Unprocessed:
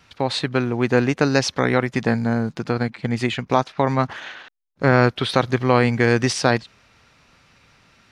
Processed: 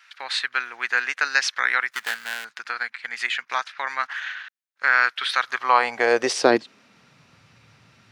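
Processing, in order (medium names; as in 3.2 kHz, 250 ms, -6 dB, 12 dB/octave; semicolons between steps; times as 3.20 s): 1.90–2.45 s: dead-time distortion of 0.22 ms; high-pass sweep 1.6 kHz -> 110 Hz, 5.37–7.35 s; trim -1.5 dB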